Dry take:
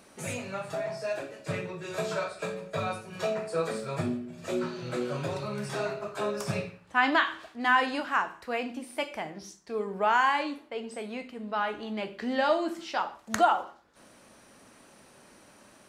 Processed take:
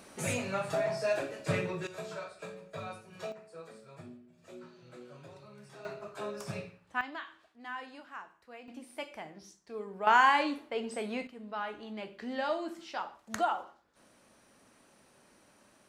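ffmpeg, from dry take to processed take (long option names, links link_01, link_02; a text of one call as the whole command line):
ffmpeg -i in.wav -af "asetnsamples=nb_out_samples=441:pad=0,asendcmd='1.87 volume volume -10dB;3.32 volume volume -18.5dB;5.85 volume volume -8dB;7.01 volume volume -18dB;8.68 volume volume -8.5dB;10.07 volume volume 1dB;11.27 volume volume -7.5dB',volume=2dB" out.wav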